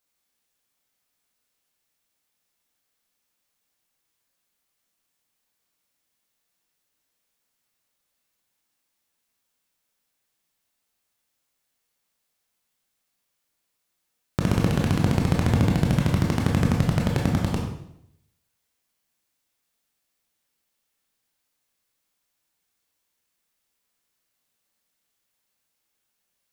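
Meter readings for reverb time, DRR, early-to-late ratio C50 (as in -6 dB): 0.75 s, -1.0 dB, 3.5 dB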